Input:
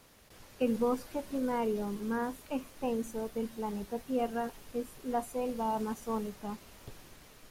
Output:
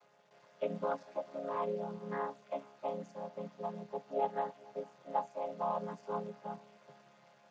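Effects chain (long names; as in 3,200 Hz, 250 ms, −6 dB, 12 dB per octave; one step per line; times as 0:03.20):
channel vocoder with a chord as carrier major triad, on C#3
low shelf with overshoot 420 Hz −13.5 dB, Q 1.5
on a send: feedback echo with a low-pass in the loop 448 ms, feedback 42%, low-pass 1,400 Hz, level −23 dB
on the sum: level +2.5 dB
Speex 36 kbit/s 32,000 Hz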